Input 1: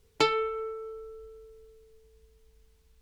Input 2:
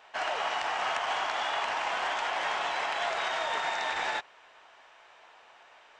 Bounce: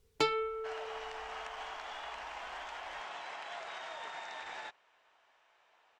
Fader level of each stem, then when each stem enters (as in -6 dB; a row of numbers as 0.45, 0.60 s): -5.5, -13.0 dB; 0.00, 0.50 s